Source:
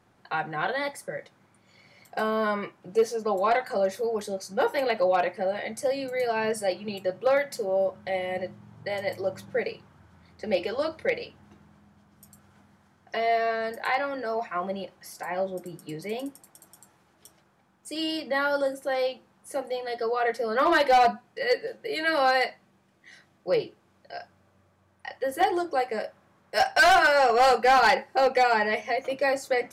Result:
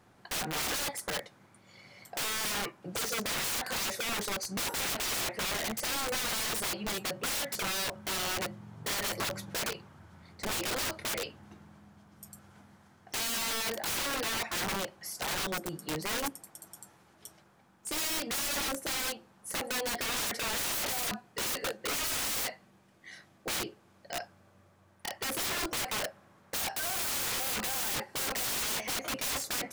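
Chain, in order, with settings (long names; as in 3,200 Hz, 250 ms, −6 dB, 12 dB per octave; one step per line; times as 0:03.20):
high-shelf EQ 6,400 Hz +3.5 dB
wrap-around overflow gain 29.5 dB
level +1.5 dB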